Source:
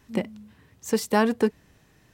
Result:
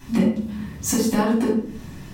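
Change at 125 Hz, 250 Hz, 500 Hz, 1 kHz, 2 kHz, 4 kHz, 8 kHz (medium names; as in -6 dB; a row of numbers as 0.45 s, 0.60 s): +9.5 dB, +7.5 dB, 0.0 dB, -0.5 dB, -1.5 dB, +3.0 dB, +10.0 dB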